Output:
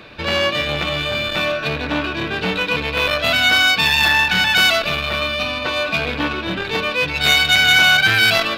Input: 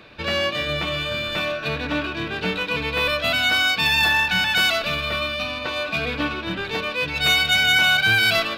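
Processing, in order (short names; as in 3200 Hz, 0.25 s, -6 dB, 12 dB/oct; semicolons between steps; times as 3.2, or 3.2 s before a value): core saturation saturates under 1400 Hz; gain +6 dB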